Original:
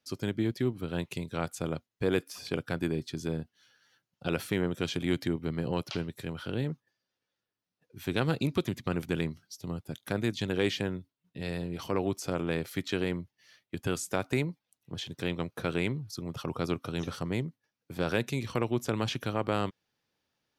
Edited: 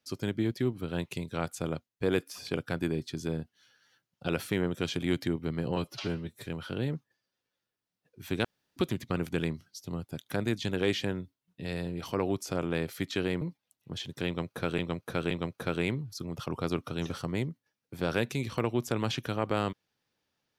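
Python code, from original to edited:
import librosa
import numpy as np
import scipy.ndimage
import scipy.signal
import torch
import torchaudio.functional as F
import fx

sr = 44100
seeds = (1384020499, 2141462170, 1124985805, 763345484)

y = fx.edit(x, sr, fx.fade_out_to(start_s=1.75, length_s=0.28, curve='qua', floor_db=-6.0),
    fx.stretch_span(start_s=5.76, length_s=0.47, factor=1.5),
    fx.room_tone_fill(start_s=8.21, length_s=0.32),
    fx.cut(start_s=13.18, length_s=1.25),
    fx.repeat(start_s=15.28, length_s=0.52, count=3), tone=tone)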